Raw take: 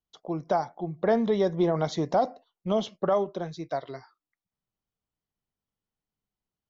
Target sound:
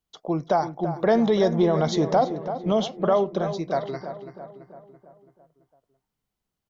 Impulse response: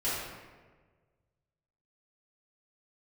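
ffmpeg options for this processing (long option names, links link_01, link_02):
-filter_complex "[0:a]asettb=1/sr,asplit=3[link_01][link_02][link_03];[link_01]atrim=end=0.864[link_04];[link_02]atrim=start=0.86:end=1.62,asetpts=PTS-STARTPTS,afade=type=in:duration=0.004:curve=qsin,afade=type=out:start_time=0.756:duration=0.004:curve=qsin,highshelf=frequency=5200:gain=9[link_05];[link_03]atrim=start=1.616[link_06];[link_04][link_05]acrossfade=duration=0.004:curve1=hsin:curve2=qsin[link_07];[link_07][link_06]acrossfade=duration=0.004:curve1=qsin:curve2=hsin,asplit=2[link_08][link_09];[link_09]alimiter=limit=-21.5dB:level=0:latency=1,volume=0dB[link_10];[link_08][link_10]amix=inputs=2:normalize=0,asplit=2[link_11][link_12];[link_12]adelay=334,lowpass=frequency=2200:poles=1,volume=-10dB,asplit=2[link_13][link_14];[link_14]adelay=334,lowpass=frequency=2200:poles=1,volume=0.55,asplit=2[link_15][link_16];[link_16]adelay=334,lowpass=frequency=2200:poles=1,volume=0.55,asplit=2[link_17][link_18];[link_18]adelay=334,lowpass=frequency=2200:poles=1,volume=0.55,asplit=2[link_19][link_20];[link_20]adelay=334,lowpass=frequency=2200:poles=1,volume=0.55,asplit=2[link_21][link_22];[link_22]adelay=334,lowpass=frequency=2200:poles=1,volume=0.55[link_23];[link_11][link_13][link_15][link_17][link_19][link_21][link_23]amix=inputs=7:normalize=0"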